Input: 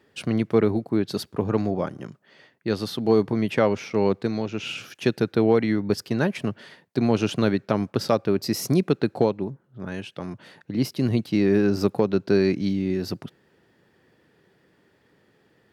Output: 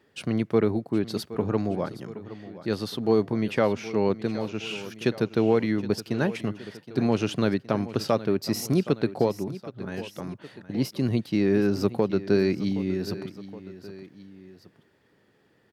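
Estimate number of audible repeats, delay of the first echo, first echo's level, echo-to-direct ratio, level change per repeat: 2, 769 ms, −15.5 dB, −14.0 dB, −4.5 dB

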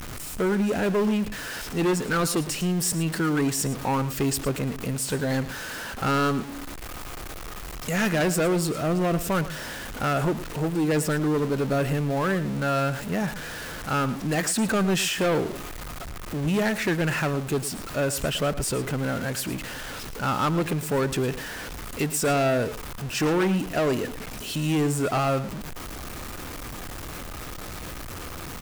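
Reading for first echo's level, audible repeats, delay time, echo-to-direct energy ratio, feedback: −14.5 dB, 1, 110 ms, −14.5 dB, repeats not evenly spaced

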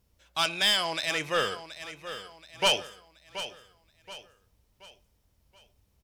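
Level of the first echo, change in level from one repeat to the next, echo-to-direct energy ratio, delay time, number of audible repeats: −12.5 dB, −8.0 dB, −11.5 dB, 727 ms, 3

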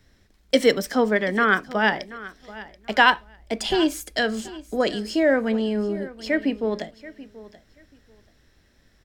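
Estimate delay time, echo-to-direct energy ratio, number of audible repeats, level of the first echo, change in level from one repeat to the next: 732 ms, −18.0 dB, 2, −18.0 dB, −14.5 dB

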